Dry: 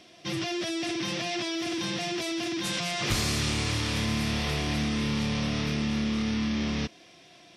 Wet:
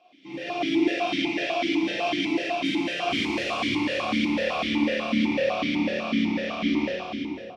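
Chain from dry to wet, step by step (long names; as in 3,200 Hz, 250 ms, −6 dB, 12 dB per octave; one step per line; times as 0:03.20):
in parallel at −10.5 dB: soft clipping −30 dBFS, distortion −10 dB
on the sum: four-comb reverb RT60 2.5 s, combs from 29 ms, DRR −5.5 dB
automatic gain control gain up to 11.5 dB
pitch-shifted copies added −3 semitones −11 dB, +4 semitones −15 dB
on a send: feedback echo with a low-pass in the loop 308 ms, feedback 73%, low-pass 1,200 Hz, level −7.5 dB
on the sum: formant filter that steps through the vowels 8 Hz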